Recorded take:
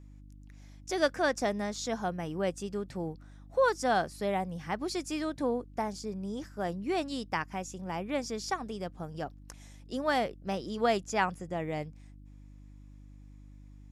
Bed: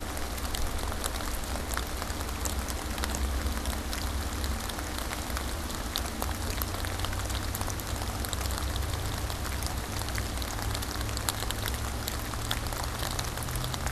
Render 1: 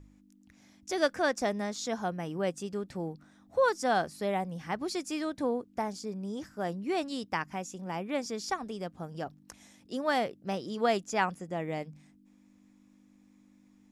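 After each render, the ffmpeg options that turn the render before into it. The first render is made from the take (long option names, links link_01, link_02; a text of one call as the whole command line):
ffmpeg -i in.wav -af "bandreject=frequency=50:width_type=h:width=4,bandreject=frequency=100:width_type=h:width=4,bandreject=frequency=150:width_type=h:width=4" out.wav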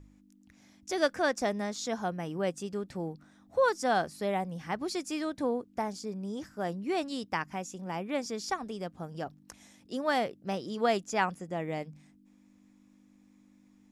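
ffmpeg -i in.wav -af anull out.wav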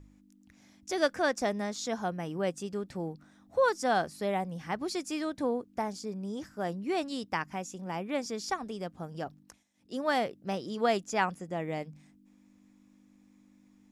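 ffmpeg -i in.wav -filter_complex "[0:a]asplit=3[link_01][link_02][link_03];[link_01]atrim=end=9.64,asetpts=PTS-STARTPTS,afade=type=out:start_time=9.39:duration=0.25:silence=0.0841395[link_04];[link_02]atrim=start=9.64:end=9.74,asetpts=PTS-STARTPTS,volume=-21.5dB[link_05];[link_03]atrim=start=9.74,asetpts=PTS-STARTPTS,afade=type=in:duration=0.25:silence=0.0841395[link_06];[link_04][link_05][link_06]concat=n=3:v=0:a=1" out.wav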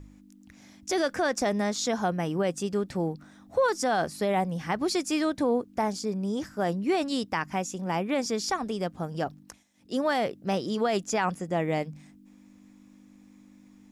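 ffmpeg -i in.wav -af "acontrast=87,alimiter=limit=-16.5dB:level=0:latency=1:release=25" out.wav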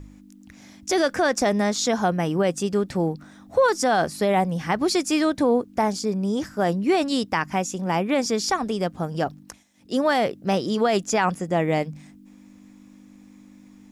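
ffmpeg -i in.wav -af "volume=5.5dB" out.wav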